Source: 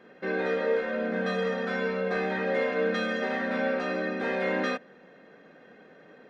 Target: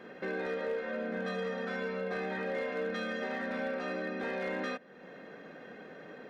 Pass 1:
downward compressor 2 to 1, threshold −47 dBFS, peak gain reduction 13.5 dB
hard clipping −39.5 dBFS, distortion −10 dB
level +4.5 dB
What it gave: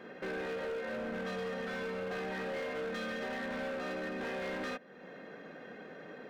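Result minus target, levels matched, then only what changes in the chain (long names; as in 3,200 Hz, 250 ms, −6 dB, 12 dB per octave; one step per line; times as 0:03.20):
hard clipping: distortion +16 dB
change: hard clipping −32.5 dBFS, distortion −26 dB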